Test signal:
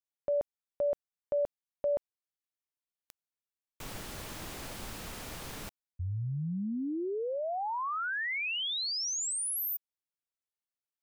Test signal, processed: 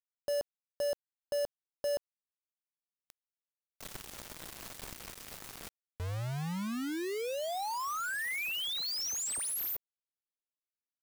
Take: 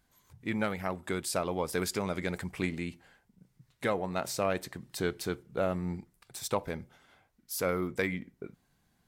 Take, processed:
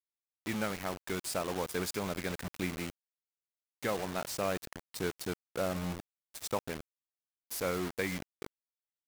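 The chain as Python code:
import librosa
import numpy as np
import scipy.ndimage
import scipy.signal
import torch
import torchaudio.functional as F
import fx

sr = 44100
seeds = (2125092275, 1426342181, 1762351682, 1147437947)

y = fx.quant_dither(x, sr, seeds[0], bits=6, dither='none')
y = y * librosa.db_to_amplitude(-3.5)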